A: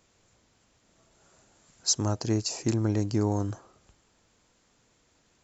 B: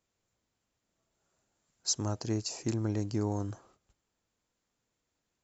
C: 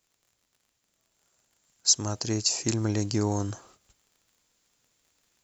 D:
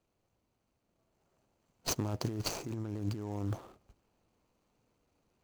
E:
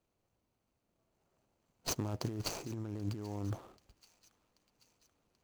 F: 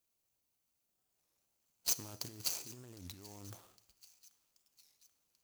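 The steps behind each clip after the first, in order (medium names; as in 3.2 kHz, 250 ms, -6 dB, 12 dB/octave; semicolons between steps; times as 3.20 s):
gate -56 dBFS, range -11 dB; trim -5.5 dB
treble shelf 2 kHz +10.5 dB; in parallel at +1.5 dB: gain riding; on the sum: crackle 48 per s -48 dBFS; trim -4.5 dB
median filter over 25 samples; compressor with a negative ratio -35 dBFS, ratio -1; trim -1 dB
feedback echo behind a high-pass 784 ms, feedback 58%, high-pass 1.7 kHz, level -20 dB; trim -2.5 dB
pre-emphasis filter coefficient 0.9; Schroeder reverb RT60 0.88 s, combs from 28 ms, DRR 16 dB; warped record 33 1/3 rpm, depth 250 cents; trim +6 dB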